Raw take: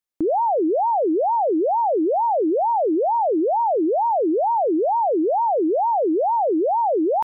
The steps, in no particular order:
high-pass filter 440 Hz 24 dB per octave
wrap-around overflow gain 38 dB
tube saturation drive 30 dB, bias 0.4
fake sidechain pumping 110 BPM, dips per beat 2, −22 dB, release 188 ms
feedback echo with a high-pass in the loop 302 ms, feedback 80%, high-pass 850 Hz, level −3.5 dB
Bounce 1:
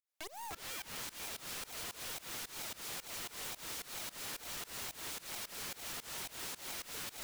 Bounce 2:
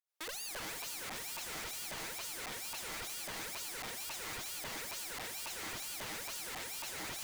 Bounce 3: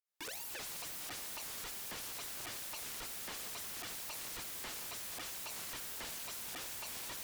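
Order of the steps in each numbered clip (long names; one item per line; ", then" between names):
high-pass filter, then tube saturation, then feedback echo with a high-pass in the loop, then wrap-around overflow, then fake sidechain pumping
feedback echo with a high-pass in the loop, then fake sidechain pumping, then tube saturation, then high-pass filter, then wrap-around overflow
feedback echo with a high-pass in the loop, then fake sidechain pumping, then high-pass filter, then wrap-around overflow, then tube saturation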